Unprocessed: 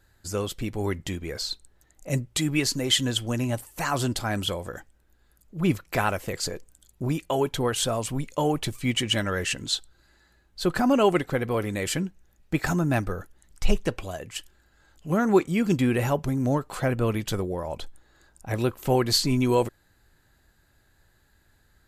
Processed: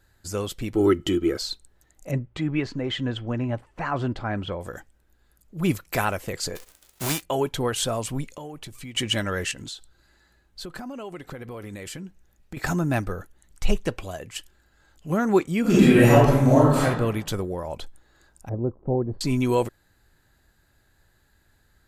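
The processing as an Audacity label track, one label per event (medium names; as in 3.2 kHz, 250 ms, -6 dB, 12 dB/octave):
0.750000	1.370000	small resonant body resonances 340/1300/3000 Hz, height 18 dB
2.110000	4.610000	low-pass 2 kHz
5.570000	6.050000	treble shelf 6 kHz +7.5 dB
6.550000	7.220000	formants flattened exponent 0.3
8.290000	8.950000	compression 5:1, threshold -36 dBFS
9.510000	12.570000	compression 8:1, threshold -33 dBFS
13.100000	13.820000	band-stop 5.1 kHz
15.610000	16.830000	reverb throw, RT60 0.99 s, DRR -9 dB
18.490000	19.210000	Bessel low-pass 520 Hz, order 4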